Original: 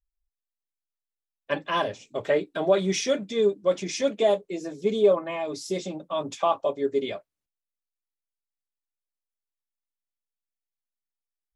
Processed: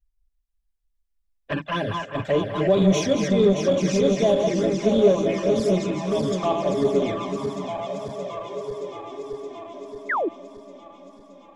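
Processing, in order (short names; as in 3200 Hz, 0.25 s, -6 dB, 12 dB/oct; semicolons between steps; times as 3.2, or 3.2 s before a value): regenerating reverse delay 0.311 s, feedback 83%, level -6 dB; envelope flanger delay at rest 4.2 ms, full sweep at -19 dBFS; in parallel at -6.5 dB: soft clip -27 dBFS, distortion -6 dB; on the sum: tone controls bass +11 dB, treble -1 dB; narrowing echo 0.198 s, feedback 73%, band-pass 1100 Hz, level -9.5 dB; painted sound fall, 10.09–10.29, 280–2200 Hz -23 dBFS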